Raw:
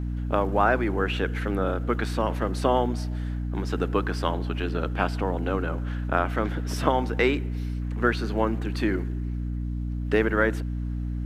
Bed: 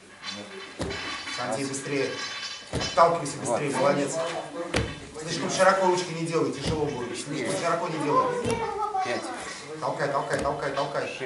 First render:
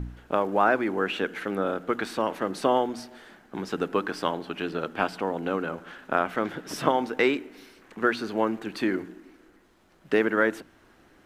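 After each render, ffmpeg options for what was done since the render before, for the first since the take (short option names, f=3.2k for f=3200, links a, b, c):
-af "bandreject=f=60:t=h:w=4,bandreject=f=120:t=h:w=4,bandreject=f=180:t=h:w=4,bandreject=f=240:t=h:w=4,bandreject=f=300:t=h:w=4"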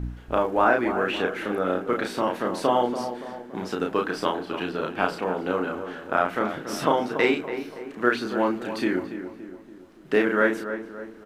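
-filter_complex "[0:a]asplit=2[a][b];[b]adelay=33,volume=-3dB[c];[a][c]amix=inputs=2:normalize=0,asplit=2[d][e];[e]adelay=284,lowpass=f=1.6k:p=1,volume=-9.5dB,asplit=2[f][g];[g]adelay=284,lowpass=f=1.6k:p=1,volume=0.51,asplit=2[h][i];[i]adelay=284,lowpass=f=1.6k:p=1,volume=0.51,asplit=2[j][k];[k]adelay=284,lowpass=f=1.6k:p=1,volume=0.51,asplit=2[l][m];[m]adelay=284,lowpass=f=1.6k:p=1,volume=0.51,asplit=2[n][o];[o]adelay=284,lowpass=f=1.6k:p=1,volume=0.51[p];[d][f][h][j][l][n][p]amix=inputs=7:normalize=0"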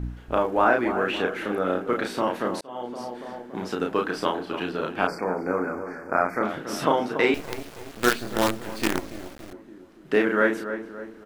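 -filter_complex "[0:a]asettb=1/sr,asplit=3[a][b][c];[a]atrim=end=5.074[d];[b]atrim=start=5.07:end=6.43,asetpts=PTS-STARTPTS,afade=t=in:d=0.004:c=qsin,afade=t=out:st=1.356:d=0.004:c=qsin,asuperstop=centerf=3300:order=20:qfactor=1.7[e];[c]atrim=start=6.426[f];[d][e]acrossfade=d=0.004:c1=hsin:c2=qsin[g];[g][f]acrossfade=d=0.004:c1=qsin:c2=hsin,asettb=1/sr,asplit=3[h][i][j];[h]atrim=end=7.344[k];[i]atrim=start=7.34:end=9.53,asetpts=PTS-STARTPTS,afade=t=in:d=0.004:c=qsin,afade=t=out:st=2.186:d=0.004:c=qsin,acrusher=bits=4:dc=4:mix=0:aa=0.000001[l];[j]atrim=start=9.526[m];[k][l]acrossfade=d=0.004:c1=hsin:c2=qsin[n];[n][m]acrossfade=d=0.004:c1=qsin:c2=hsin,asplit=2[o][p];[o]atrim=end=2.61,asetpts=PTS-STARTPTS,afade=t=out:st=2.606:d=0.004:c=hsin[q];[p]atrim=start=2.61,asetpts=PTS-STARTPTS,afade=t=in:d=0.73[r];[q][r]concat=n=2:v=0:a=1"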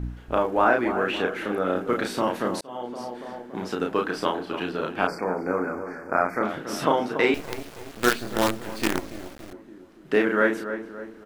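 -filter_complex "[0:a]asettb=1/sr,asplit=3[a][b][c];[a]atrim=end=1.764[d];[b]atrim=start=1.76:end=2.77,asetpts=PTS-STARTPTS,afade=t=in:d=0.004:c=qsin,afade=t=out:st=1.006:d=0.004:c=qsin,bass=f=250:g=3,treble=f=4k:g=4[e];[c]atrim=start=2.766[f];[d][e]acrossfade=d=0.004:c1=hsin:c2=qsin[g];[g][f]acrossfade=d=0.004:c1=qsin:c2=hsin"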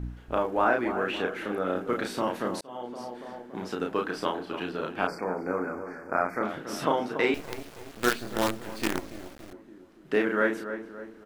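-af "volume=-4dB"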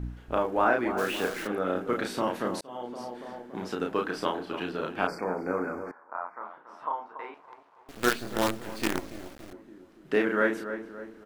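-filter_complex "[0:a]asplit=3[a][b][c];[a]afade=t=out:st=0.97:d=0.02[d];[b]acrusher=bits=7:dc=4:mix=0:aa=0.000001,afade=t=in:st=0.97:d=0.02,afade=t=out:st=1.46:d=0.02[e];[c]afade=t=in:st=1.46:d=0.02[f];[d][e][f]amix=inputs=3:normalize=0,asettb=1/sr,asplit=3[g][h][i];[g]atrim=end=5.914[j];[h]atrim=start=5.91:end=7.89,asetpts=PTS-STARTPTS,afade=t=in:d=0.004:c=qsin,afade=t=out:st=1.976:d=0.004:c=qsin,bandpass=f=990:t=q:w=4.7[k];[i]atrim=start=7.886[l];[j][k]acrossfade=d=0.004:c1=hsin:c2=qsin[m];[m][l]acrossfade=d=0.004:c1=qsin:c2=hsin"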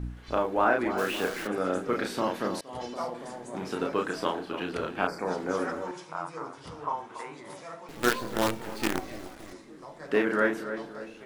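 -filter_complex "[1:a]volume=-17dB[a];[0:a][a]amix=inputs=2:normalize=0"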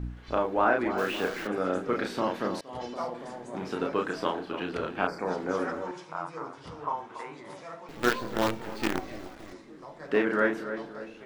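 -af "equalizer=f=11k:w=0.69:g=-9"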